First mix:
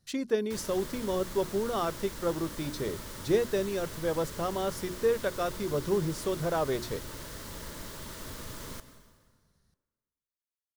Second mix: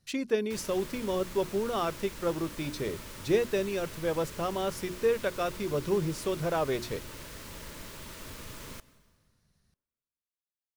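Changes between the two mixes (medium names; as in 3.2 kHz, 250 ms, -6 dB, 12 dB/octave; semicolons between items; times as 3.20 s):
background: send -8.5 dB; master: add peaking EQ 2.5 kHz +7 dB 0.44 oct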